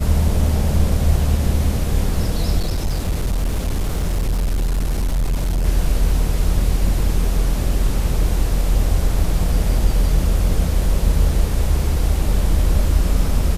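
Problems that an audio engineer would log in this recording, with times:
2.58–5.66 clipped -15.5 dBFS

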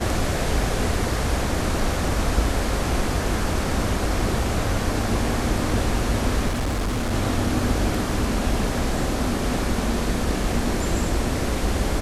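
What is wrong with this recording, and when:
6.48–7.14 clipped -20.5 dBFS

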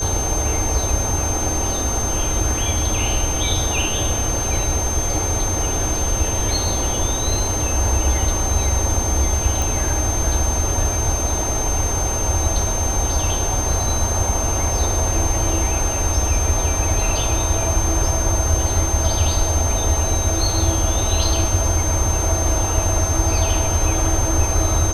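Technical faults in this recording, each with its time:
tone 6300 Hz -23 dBFS
9.62 pop

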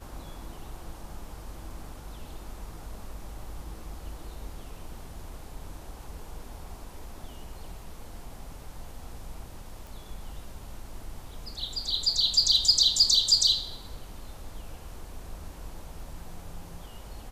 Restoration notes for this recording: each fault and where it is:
9.87 pop

